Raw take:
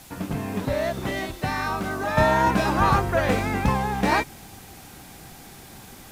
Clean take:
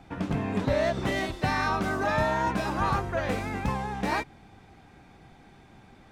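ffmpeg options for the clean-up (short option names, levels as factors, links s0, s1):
-af "afwtdn=0.0045,asetnsamples=n=441:p=0,asendcmd='2.17 volume volume -7dB',volume=1"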